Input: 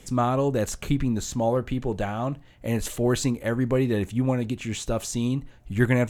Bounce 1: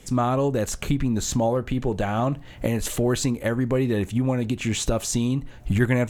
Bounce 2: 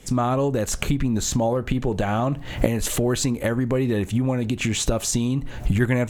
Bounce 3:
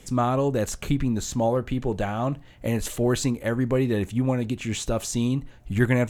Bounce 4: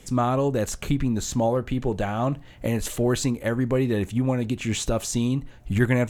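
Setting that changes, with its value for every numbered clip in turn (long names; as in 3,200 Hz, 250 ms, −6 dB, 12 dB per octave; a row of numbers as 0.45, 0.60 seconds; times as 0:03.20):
camcorder AGC, rising by: 32, 80, 5.1, 13 dB per second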